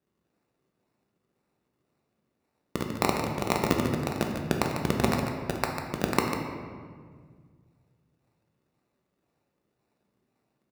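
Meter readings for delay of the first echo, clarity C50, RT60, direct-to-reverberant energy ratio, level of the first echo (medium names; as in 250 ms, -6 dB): 147 ms, 2.5 dB, 1.8 s, 0.0 dB, -8.5 dB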